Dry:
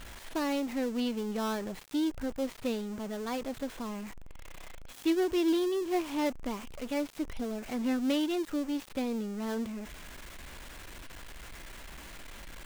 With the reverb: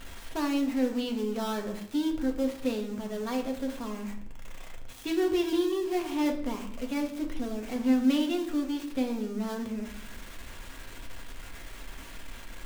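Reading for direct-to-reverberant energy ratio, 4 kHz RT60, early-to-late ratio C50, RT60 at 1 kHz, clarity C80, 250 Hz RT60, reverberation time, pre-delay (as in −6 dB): 2.0 dB, 0.55 s, 9.0 dB, 0.65 s, 12.0 dB, 1.1 s, 0.70 s, 4 ms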